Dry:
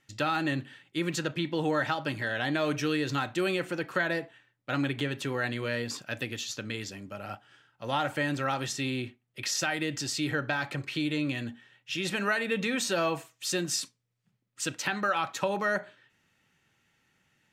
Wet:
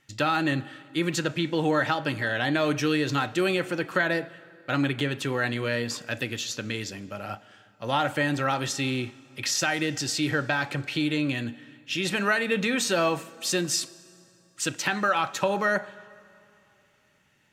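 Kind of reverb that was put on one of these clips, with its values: plate-style reverb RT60 2.9 s, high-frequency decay 0.75×, DRR 19 dB; gain +4 dB

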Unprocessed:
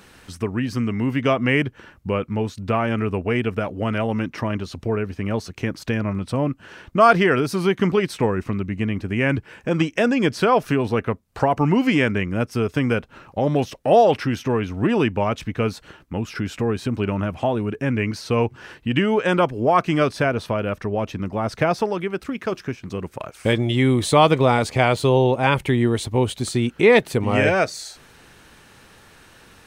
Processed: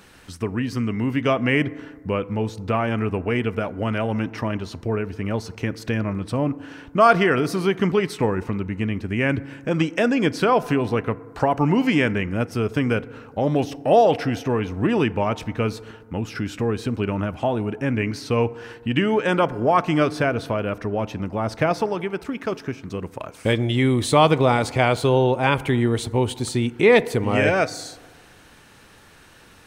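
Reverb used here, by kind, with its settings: FDN reverb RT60 1.6 s, low-frequency decay 1×, high-frequency decay 0.3×, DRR 16.5 dB; gain -1 dB

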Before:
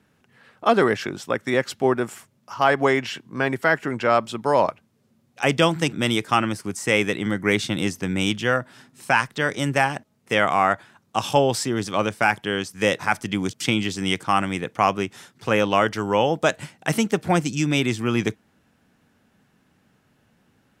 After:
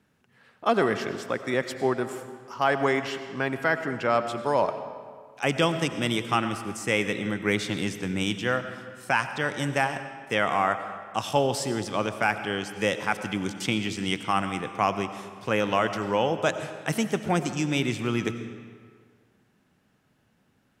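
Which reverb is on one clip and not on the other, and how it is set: digital reverb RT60 1.8 s, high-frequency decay 0.75×, pre-delay 55 ms, DRR 9.5 dB; gain -5 dB

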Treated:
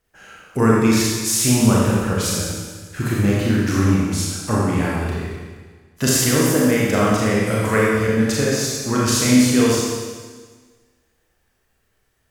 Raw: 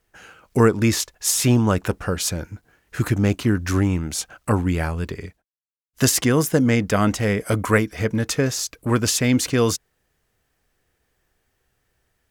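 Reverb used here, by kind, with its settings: Schroeder reverb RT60 1.5 s, combs from 28 ms, DRR -5.5 dB; gain -3.5 dB

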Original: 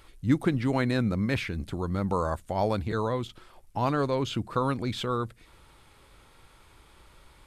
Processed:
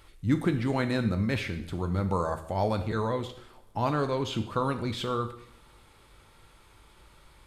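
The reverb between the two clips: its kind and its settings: two-slope reverb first 0.63 s, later 3.2 s, from -28 dB, DRR 7 dB; gain -1.5 dB

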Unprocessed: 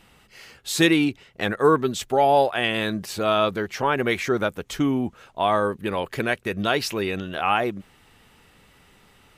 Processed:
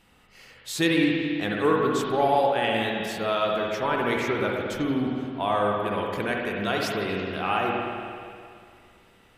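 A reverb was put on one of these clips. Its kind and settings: spring tank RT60 2.3 s, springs 54/58 ms, chirp 35 ms, DRR -1.5 dB; gain -6 dB

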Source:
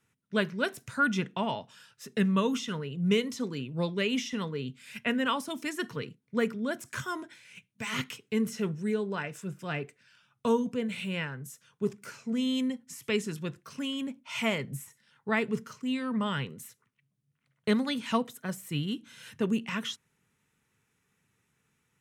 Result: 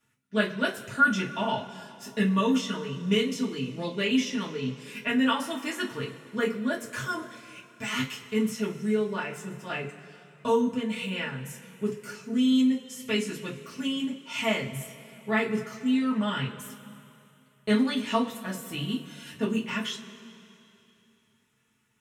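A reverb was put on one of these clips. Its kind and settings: two-slope reverb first 0.21 s, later 2.9 s, from -22 dB, DRR -5.5 dB; gain -4 dB

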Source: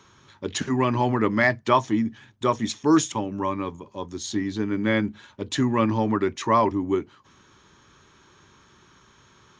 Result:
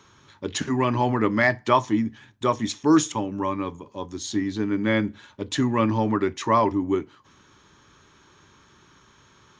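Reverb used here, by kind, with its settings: FDN reverb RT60 0.34 s, low-frequency decay 0.85×, high-frequency decay 0.85×, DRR 16.5 dB

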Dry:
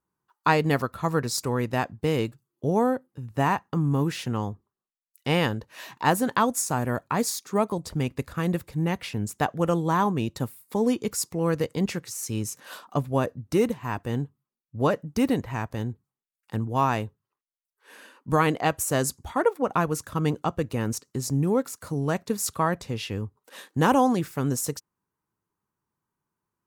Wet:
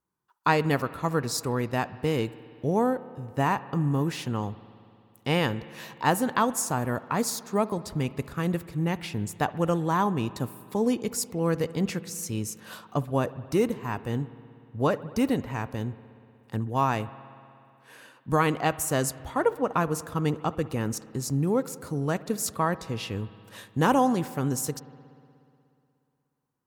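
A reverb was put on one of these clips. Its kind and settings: spring tank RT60 2.6 s, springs 60 ms, chirp 20 ms, DRR 16 dB; gain -1.5 dB

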